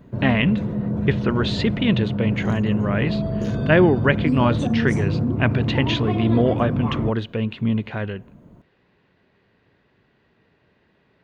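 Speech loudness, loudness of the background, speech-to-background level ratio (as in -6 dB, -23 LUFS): -22.5 LUFS, -24.5 LUFS, 2.0 dB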